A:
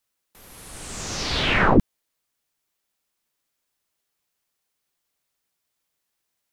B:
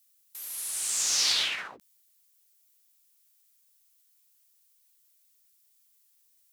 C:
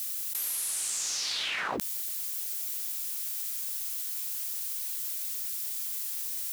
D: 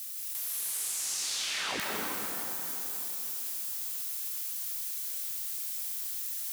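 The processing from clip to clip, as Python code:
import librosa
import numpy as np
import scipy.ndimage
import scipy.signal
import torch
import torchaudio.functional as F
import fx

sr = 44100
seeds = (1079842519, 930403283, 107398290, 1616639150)

y1 = fx.over_compress(x, sr, threshold_db=-25.0, ratio=-1.0)
y1 = np.diff(y1, prepend=0.0)
y1 = y1 * librosa.db_to_amplitude(4.5)
y2 = fx.env_flatten(y1, sr, amount_pct=100)
y2 = y2 * librosa.db_to_amplitude(-8.0)
y3 = fx.rev_plate(y2, sr, seeds[0], rt60_s=4.0, hf_ratio=0.6, predelay_ms=120, drr_db=-3.5)
y3 = y3 * librosa.db_to_amplitude(-5.5)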